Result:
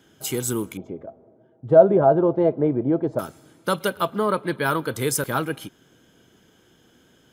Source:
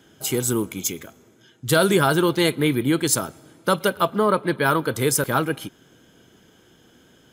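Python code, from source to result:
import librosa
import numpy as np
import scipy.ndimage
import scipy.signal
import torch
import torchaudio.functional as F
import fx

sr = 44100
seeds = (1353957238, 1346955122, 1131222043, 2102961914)

y = fx.lowpass_res(x, sr, hz=660.0, q=4.9, at=(0.77, 3.19))
y = y * librosa.db_to_amplitude(-3.0)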